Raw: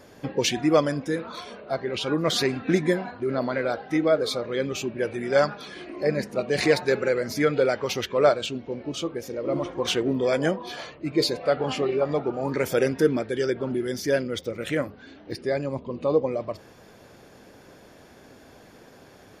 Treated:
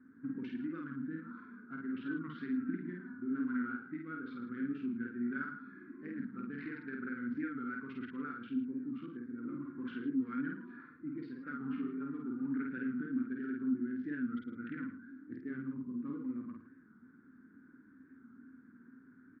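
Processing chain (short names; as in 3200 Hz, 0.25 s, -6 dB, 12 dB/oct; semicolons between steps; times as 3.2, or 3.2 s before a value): Wiener smoothing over 15 samples; bell 700 Hz -13.5 dB 1.3 oct; compressor, threshold -30 dBFS, peak gain reduction 10.5 dB; double band-pass 610 Hz, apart 2.5 oct; air absorption 410 m; doubler 50 ms -2 dB; echo 0.11 s -11.5 dB; record warp 45 rpm, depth 100 cents; gain +3 dB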